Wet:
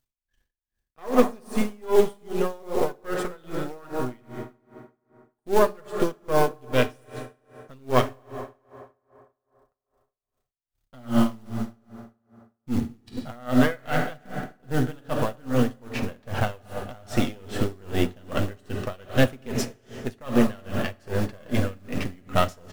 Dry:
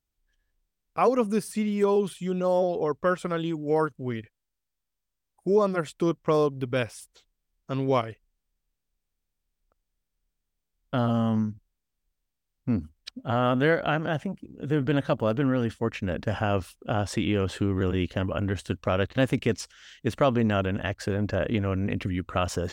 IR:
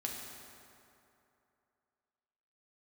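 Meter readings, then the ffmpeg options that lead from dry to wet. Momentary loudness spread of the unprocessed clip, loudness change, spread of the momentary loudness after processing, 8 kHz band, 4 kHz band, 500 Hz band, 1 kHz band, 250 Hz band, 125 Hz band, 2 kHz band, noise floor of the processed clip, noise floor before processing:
10 LU, 0.0 dB, 15 LU, +2.5 dB, +1.0 dB, -0.5 dB, +0.5 dB, +0.5 dB, -1.5 dB, +0.5 dB, -85 dBFS, -83 dBFS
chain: -filter_complex "[0:a]aeval=exprs='if(lt(val(0),0),0.251*val(0),val(0))':c=same,asplit=2[a][b];[b]adelay=219,lowpass=f=880:p=1,volume=-11dB,asplit=2[c][d];[d]adelay=219,lowpass=f=880:p=1,volume=0.29,asplit=2[e][f];[f]adelay=219,lowpass=f=880:p=1,volume=0.29[g];[c][e][g]amix=inputs=3:normalize=0[h];[a][h]amix=inputs=2:normalize=0,acrusher=bits=5:mode=log:mix=0:aa=0.000001,asplit=2[i][j];[1:a]atrim=start_sample=2205,adelay=8[k];[j][k]afir=irnorm=-1:irlink=0,volume=-4dB[l];[i][l]amix=inputs=2:normalize=0,aeval=exprs='val(0)*pow(10,-29*(0.5-0.5*cos(2*PI*2.5*n/s))/20)':c=same,volume=7.5dB"

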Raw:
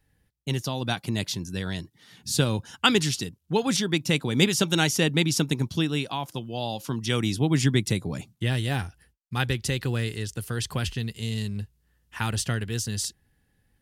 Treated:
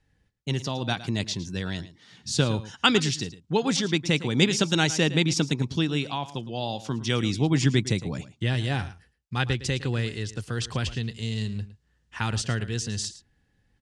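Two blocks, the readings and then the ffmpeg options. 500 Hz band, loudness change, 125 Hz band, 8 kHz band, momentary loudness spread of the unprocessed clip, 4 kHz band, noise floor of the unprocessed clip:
0.0 dB, 0.0 dB, 0.0 dB, -2.0 dB, 12 LU, 0.0 dB, -70 dBFS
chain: -af "lowpass=f=7.7k:w=0.5412,lowpass=f=7.7k:w=1.3066,aecho=1:1:110:0.168"

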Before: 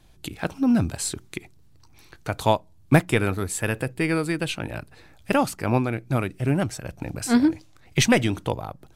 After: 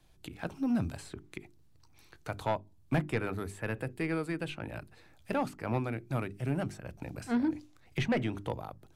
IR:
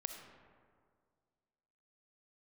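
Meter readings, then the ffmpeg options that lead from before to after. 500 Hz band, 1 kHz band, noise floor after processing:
-10.0 dB, -10.5 dB, -60 dBFS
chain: -filter_complex "[0:a]bandreject=f=50:t=h:w=6,bandreject=f=100:t=h:w=6,bandreject=f=150:t=h:w=6,bandreject=f=200:t=h:w=6,bandreject=f=250:t=h:w=6,bandreject=f=300:t=h:w=6,bandreject=f=350:t=h:w=6,bandreject=f=400:t=h:w=6,acrossover=split=170|2800[a][b][c];[c]acompressor=threshold=-45dB:ratio=6[d];[a][b][d]amix=inputs=3:normalize=0,asoftclip=type=tanh:threshold=-13dB,volume=-8dB"

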